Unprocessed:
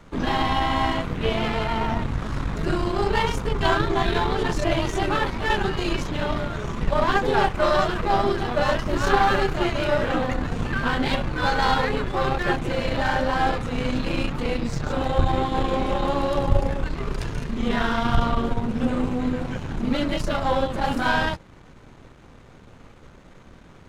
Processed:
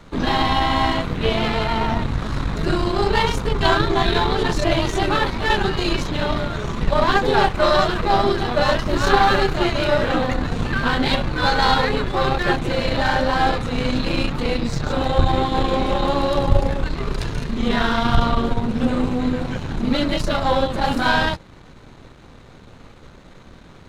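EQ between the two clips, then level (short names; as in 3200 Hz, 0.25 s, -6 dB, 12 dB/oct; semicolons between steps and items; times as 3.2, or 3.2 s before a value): bell 4000 Hz +6.5 dB 0.33 oct; +3.5 dB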